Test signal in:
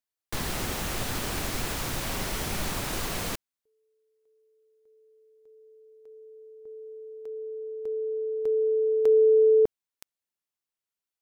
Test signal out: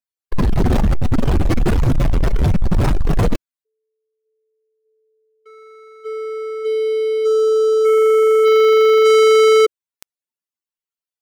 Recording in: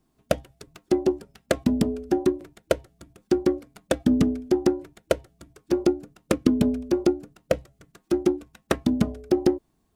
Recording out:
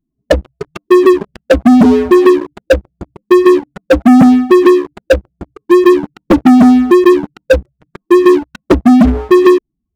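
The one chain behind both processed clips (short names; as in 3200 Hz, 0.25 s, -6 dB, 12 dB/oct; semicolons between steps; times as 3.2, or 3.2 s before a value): spectral contrast raised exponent 2.7; sample leveller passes 5; gain +6 dB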